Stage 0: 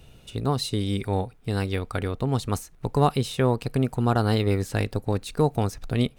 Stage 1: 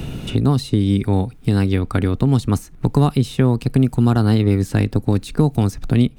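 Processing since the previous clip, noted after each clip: resonant low shelf 380 Hz +6.5 dB, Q 1.5; three-band squash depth 70%; gain +1.5 dB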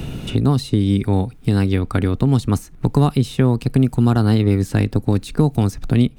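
nothing audible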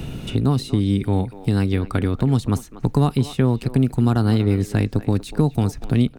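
speakerphone echo 0.24 s, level -14 dB; gain -2.5 dB

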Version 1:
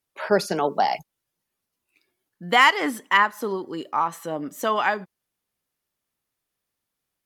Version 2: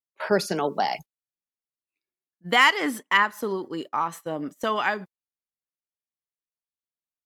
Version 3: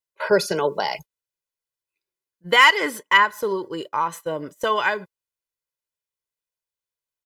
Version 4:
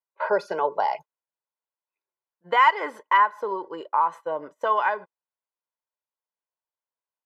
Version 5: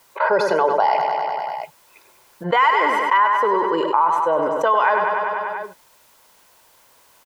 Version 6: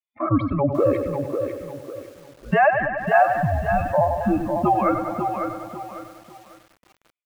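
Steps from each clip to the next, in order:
gate -35 dBFS, range -22 dB; dynamic EQ 780 Hz, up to -4 dB, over -29 dBFS, Q 0.89
comb 2 ms, depth 65%; gain +2 dB
in parallel at -3 dB: compressor, threshold -23 dBFS, peak gain reduction 14 dB; on the sum: band-pass 860 Hz, Q 1.8
on a send: feedback echo 98 ms, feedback 59%, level -10 dB; on the sum: fast leveller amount 70%
per-bin expansion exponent 2; mistuned SSB -300 Hz 340–2900 Hz; lo-fi delay 0.548 s, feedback 35%, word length 8-bit, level -6 dB; gain +2 dB

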